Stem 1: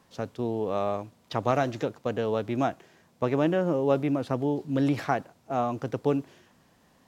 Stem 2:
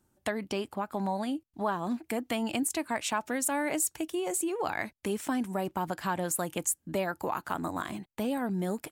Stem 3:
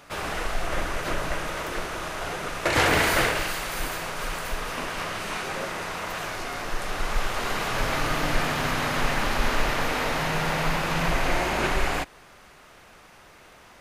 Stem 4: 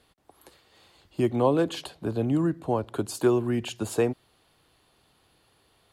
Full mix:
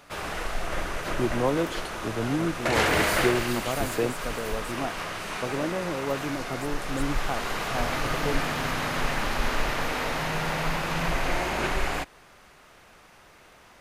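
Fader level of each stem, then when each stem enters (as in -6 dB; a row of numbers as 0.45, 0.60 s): -6.0, -16.5, -2.5, -3.0 dB; 2.20, 0.30, 0.00, 0.00 s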